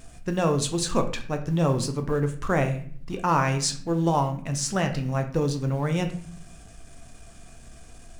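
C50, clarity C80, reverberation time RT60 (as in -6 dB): 11.0 dB, 14.5 dB, 0.55 s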